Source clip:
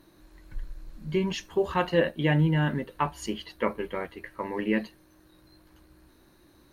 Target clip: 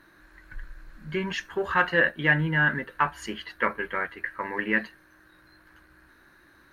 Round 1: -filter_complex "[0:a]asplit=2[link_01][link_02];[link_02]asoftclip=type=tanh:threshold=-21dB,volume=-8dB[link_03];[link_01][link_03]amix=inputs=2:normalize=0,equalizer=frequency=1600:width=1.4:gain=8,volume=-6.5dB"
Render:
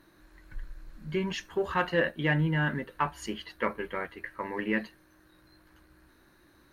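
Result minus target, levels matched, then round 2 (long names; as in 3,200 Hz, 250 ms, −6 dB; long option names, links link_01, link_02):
2,000 Hz band −4.0 dB
-filter_complex "[0:a]asplit=2[link_01][link_02];[link_02]asoftclip=type=tanh:threshold=-21dB,volume=-8dB[link_03];[link_01][link_03]amix=inputs=2:normalize=0,equalizer=frequency=1600:width=1.4:gain=18,volume=-6.5dB"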